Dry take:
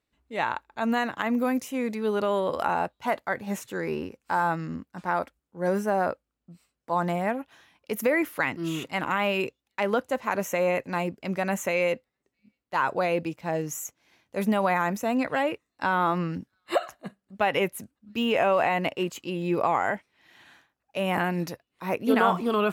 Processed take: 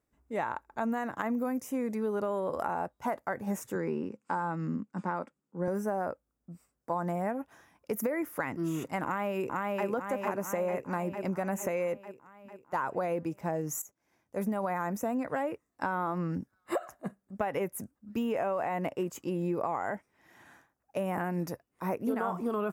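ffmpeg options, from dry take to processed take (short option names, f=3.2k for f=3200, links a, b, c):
-filter_complex "[0:a]asettb=1/sr,asplit=3[a][b][c];[a]atrim=end=3.754[d];[b]atrim=start=3.75:end=5.68,asetpts=PTS-STARTPTS,afade=t=in:d=0.004:c=qsin,afade=t=out:st=1.926:d=0.004:c=qsin,highpass=f=120:w=0.5412,highpass=f=120:w=1.3066,equalizer=f=210:t=q:w=4:g=6,equalizer=f=700:t=q:w=4:g=-6,equalizer=f=1.7k:t=q:w=4:g=-3,equalizer=f=2.8k:t=q:w=4:g=3,equalizer=f=5.8k:t=q:w=4:g=-7,lowpass=f=8k:w=0.5412,lowpass=f=8k:w=1.3066[e];[c]atrim=start=5.676[f];[d][e]acrossfade=d=0.004:c1=hsin:c2=qsin[g];[g][f]acrossfade=d=0.004:c1=qsin:c2=hsin,asplit=2[h][i];[i]afade=t=in:st=9.04:d=0.01,afade=t=out:st=9.86:d=0.01,aecho=0:1:450|900|1350|1800|2250|2700|3150|3600|4050:0.749894|0.449937|0.269962|0.161977|0.0971863|0.0583118|0.0349871|0.0209922|0.0125953[j];[h][j]amix=inputs=2:normalize=0,asplit=2[k][l];[k]atrim=end=13.82,asetpts=PTS-STARTPTS,afade=t=out:st=13.816:d=0.004:c=hsin:silence=0.16788[m];[l]atrim=start=13.82,asetpts=PTS-STARTPTS,afade=t=in:d=1.03:silence=0.16788[n];[m][n]concat=n=2:v=0:a=1,equalizer=f=3.1k:w=1.2:g=-14,bandreject=f=4.2k:w=6.1,acompressor=threshold=-31dB:ratio=5,volume=2dB"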